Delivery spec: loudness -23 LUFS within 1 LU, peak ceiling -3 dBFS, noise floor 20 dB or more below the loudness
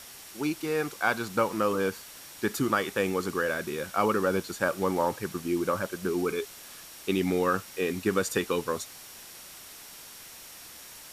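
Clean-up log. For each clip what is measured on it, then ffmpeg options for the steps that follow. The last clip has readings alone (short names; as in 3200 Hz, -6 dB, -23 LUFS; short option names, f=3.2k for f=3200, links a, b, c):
steady tone 5600 Hz; tone level -56 dBFS; noise floor -47 dBFS; noise floor target -49 dBFS; loudness -29.0 LUFS; peak -11.5 dBFS; loudness target -23.0 LUFS
-> -af "bandreject=f=5.6k:w=30"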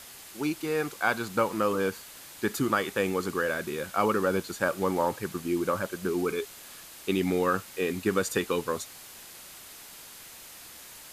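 steady tone none; noise floor -47 dBFS; noise floor target -49 dBFS
-> -af "afftdn=nr=6:nf=-47"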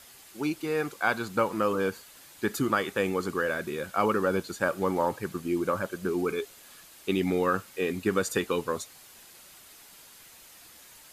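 noise floor -52 dBFS; loudness -29.0 LUFS; peak -11.5 dBFS; loudness target -23.0 LUFS
-> -af "volume=6dB"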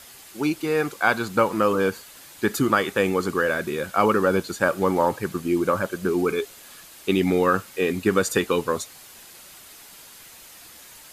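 loudness -23.0 LUFS; peak -5.5 dBFS; noise floor -46 dBFS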